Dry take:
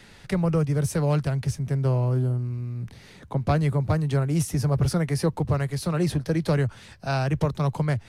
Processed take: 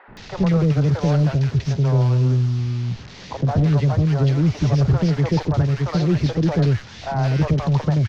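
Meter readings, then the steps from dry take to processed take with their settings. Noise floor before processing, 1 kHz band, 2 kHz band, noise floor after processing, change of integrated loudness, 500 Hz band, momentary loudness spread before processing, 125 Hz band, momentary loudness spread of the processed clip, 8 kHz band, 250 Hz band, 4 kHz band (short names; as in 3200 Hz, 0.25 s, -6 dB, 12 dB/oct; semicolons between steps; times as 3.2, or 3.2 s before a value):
-49 dBFS, +3.0 dB, +2.0 dB, -40 dBFS, +5.5 dB, +2.5 dB, 7 LU, +6.5 dB, 7 LU, n/a, +6.0 dB, +4.5 dB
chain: delta modulation 32 kbps, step -40.5 dBFS; in parallel at -3.5 dB: overloaded stage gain 25.5 dB; on the sum: three bands offset in time mids, lows, highs 80/170 ms, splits 510/1600 Hz; gain +3.5 dB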